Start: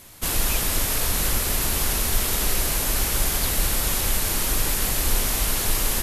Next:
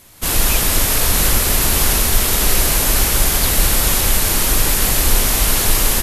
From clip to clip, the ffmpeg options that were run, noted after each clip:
-af "dynaudnorm=f=150:g=3:m=11.5dB"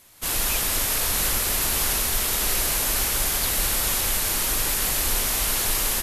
-af "lowshelf=f=410:g=-7,volume=-6.5dB"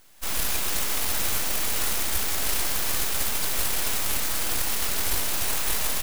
-af "aeval=exprs='abs(val(0))':c=same"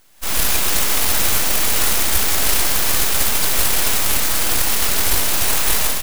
-af "dynaudnorm=f=100:g=5:m=8.5dB,volume=1.5dB"

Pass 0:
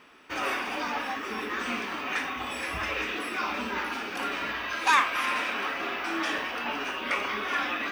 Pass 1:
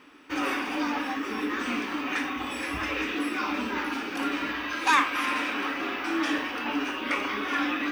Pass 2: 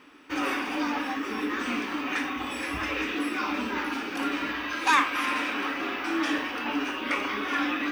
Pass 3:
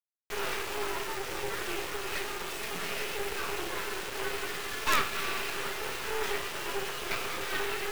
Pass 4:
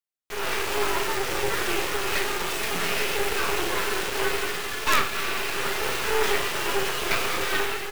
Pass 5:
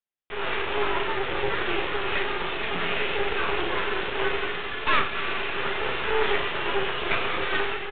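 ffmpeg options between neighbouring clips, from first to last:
-af "equalizer=f=290:w=5.5:g=14,bandreject=f=670:w=12"
-af anull
-af "afreqshift=110,acrusher=bits=3:dc=4:mix=0:aa=0.000001,volume=-1.5dB"
-filter_complex "[0:a]dynaudnorm=f=190:g=5:m=8.5dB,asplit=2[a][b];[b]adelay=41,volume=-12.5dB[c];[a][c]amix=inputs=2:normalize=0"
-af "aresample=8000,aresample=44100"

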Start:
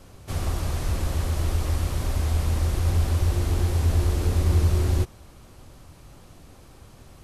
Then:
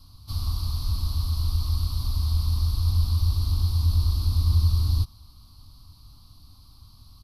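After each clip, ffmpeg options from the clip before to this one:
-af "firequalizer=gain_entry='entry(100,0);entry(150,-9);entry(280,-9);entry(400,-29);entry(1100,-3);entry(1700,-27);entry(4400,10);entry(7100,-18);entry(11000,0)':delay=0.05:min_phase=1"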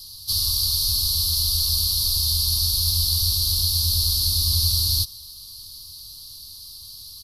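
-af "aexciter=amount=14.2:drive=5.8:freq=3.1k,volume=-5dB"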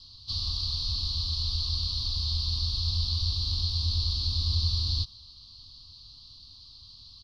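-af "lowpass=f=4k:w=0.5412,lowpass=f=4k:w=1.3066,volume=-3dB"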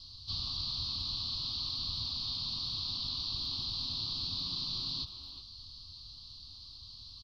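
-filter_complex "[0:a]afftfilt=real='re*lt(hypot(re,im),0.158)':imag='im*lt(hypot(re,im),0.158)':win_size=1024:overlap=0.75,acrossover=split=4200[a][b];[b]acompressor=threshold=-48dB:ratio=4:attack=1:release=60[c];[a][c]amix=inputs=2:normalize=0,asplit=2[d][e];[e]adelay=370,highpass=300,lowpass=3.4k,asoftclip=type=hard:threshold=-34dB,volume=-8dB[f];[d][f]amix=inputs=2:normalize=0"

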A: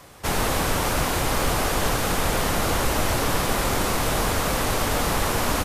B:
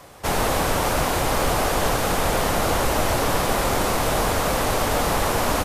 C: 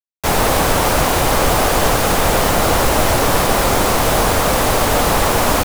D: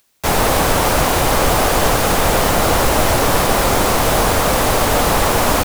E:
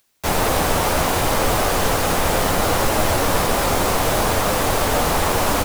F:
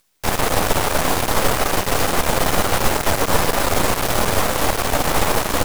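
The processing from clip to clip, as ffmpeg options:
-af "equalizer=f=660:w=1:g=4.5"
-af "acrusher=bits=4:mix=0:aa=0.000001,volume=6.5dB"
-af "acompressor=mode=upward:threshold=-34dB:ratio=2.5"
-af "flanger=delay=9:depth=3.6:regen=-45:speed=0.69:shape=triangular"
-af "aeval=exprs='max(val(0),0)':c=same,volume=4dB"

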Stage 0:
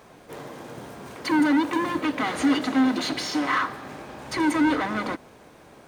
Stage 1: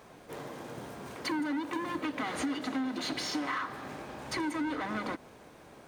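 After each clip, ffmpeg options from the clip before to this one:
-af "acompressor=threshold=-27dB:ratio=6,volume=-3.5dB"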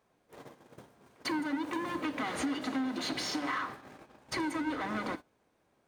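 -af "bandreject=f=148.7:t=h:w=4,bandreject=f=297.4:t=h:w=4,bandreject=f=446.1:t=h:w=4,bandreject=f=594.8:t=h:w=4,bandreject=f=743.5:t=h:w=4,bandreject=f=892.2:t=h:w=4,bandreject=f=1.0409k:t=h:w=4,bandreject=f=1.1896k:t=h:w=4,bandreject=f=1.3383k:t=h:w=4,bandreject=f=1.487k:t=h:w=4,bandreject=f=1.6357k:t=h:w=4,bandreject=f=1.7844k:t=h:w=4,bandreject=f=1.9331k:t=h:w=4,bandreject=f=2.0818k:t=h:w=4,bandreject=f=2.2305k:t=h:w=4,bandreject=f=2.3792k:t=h:w=4,bandreject=f=2.5279k:t=h:w=4,bandreject=f=2.6766k:t=h:w=4,bandreject=f=2.8253k:t=h:w=4,bandreject=f=2.974k:t=h:w=4,bandreject=f=3.1227k:t=h:w=4,bandreject=f=3.2714k:t=h:w=4,bandreject=f=3.4201k:t=h:w=4,bandreject=f=3.5688k:t=h:w=4,bandreject=f=3.7175k:t=h:w=4,bandreject=f=3.8662k:t=h:w=4,bandreject=f=4.0149k:t=h:w=4,bandreject=f=4.1636k:t=h:w=4,bandreject=f=4.3123k:t=h:w=4,bandreject=f=4.461k:t=h:w=4,bandreject=f=4.6097k:t=h:w=4,bandreject=f=4.7584k:t=h:w=4,bandreject=f=4.9071k:t=h:w=4,bandreject=f=5.0558k:t=h:w=4,bandreject=f=5.2045k:t=h:w=4,agate=range=-19dB:threshold=-40dB:ratio=16:detection=peak"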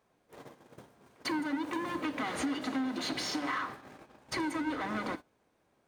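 -af anull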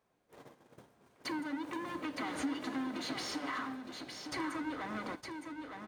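-af "aecho=1:1:913:0.501,volume=-5dB"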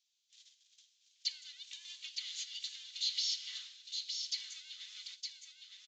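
-filter_complex "[0:a]asuperpass=centerf=5900:order=8:qfactor=0.88,aresample=16000,aresample=44100,acrossover=split=5500[a][b];[b]acompressor=threshold=-57dB:ratio=4:attack=1:release=60[c];[a][c]amix=inputs=2:normalize=0,volume=11dB"

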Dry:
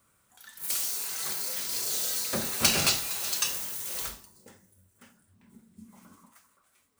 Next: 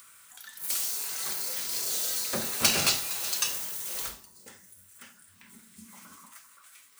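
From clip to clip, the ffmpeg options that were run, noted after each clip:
-filter_complex "[0:a]lowshelf=f=210:g=-4.5,acrossover=split=810|1100[a][b][c];[c]acompressor=mode=upward:threshold=-40dB:ratio=2.5[d];[a][b][d]amix=inputs=3:normalize=0"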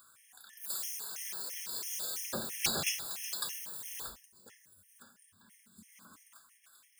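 -af "afftfilt=real='re*gt(sin(2*PI*3*pts/sr)*(1-2*mod(floor(b*sr/1024/1700),2)),0)':imag='im*gt(sin(2*PI*3*pts/sr)*(1-2*mod(floor(b*sr/1024/1700),2)),0)':win_size=1024:overlap=0.75,volume=-5dB"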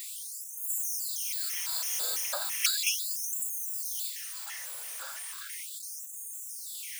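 -af "aeval=exprs='val(0)+0.5*0.0126*sgn(val(0))':c=same,afftfilt=real='re*gte(b*sr/1024,420*pow(6400/420,0.5+0.5*sin(2*PI*0.36*pts/sr)))':imag='im*gte(b*sr/1024,420*pow(6400/420,0.5+0.5*sin(2*PI*0.36*pts/sr)))':win_size=1024:overlap=0.75,volume=3.5dB"

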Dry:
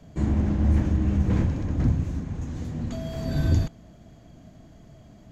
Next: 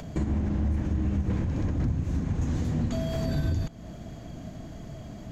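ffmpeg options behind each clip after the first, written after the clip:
-af "acompressor=threshold=-31dB:ratio=1.5,alimiter=level_in=3.5dB:limit=-24dB:level=0:latency=1:release=329,volume=-3.5dB,acompressor=mode=upward:threshold=-48dB:ratio=2.5,volume=8.5dB"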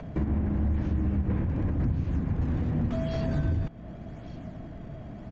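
-filter_complex "[0:a]acrossover=split=260|2900[a][b][c];[c]acrusher=samples=24:mix=1:aa=0.000001:lfo=1:lforange=38.4:lforate=0.87[d];[a][b][d]amix=inputs=3:normalize=0,aresample=16000,aresample=44100"

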